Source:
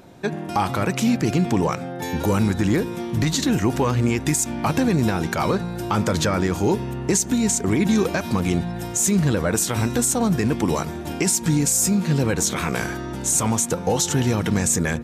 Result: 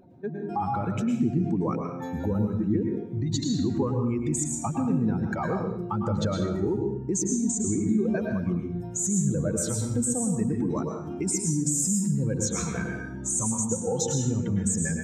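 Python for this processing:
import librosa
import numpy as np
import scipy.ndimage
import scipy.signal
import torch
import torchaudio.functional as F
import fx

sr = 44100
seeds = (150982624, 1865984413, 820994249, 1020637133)

y = fx.spec_expand(x, sr, power=2.0)
y = fx.rev_plate(y, sr, seeds[0], rt60_s=0.67, hf_ratio=0.95, predelay_ms=95, drr_db=2.0)
y = y * librosa.db_to_amplitude(-7.5)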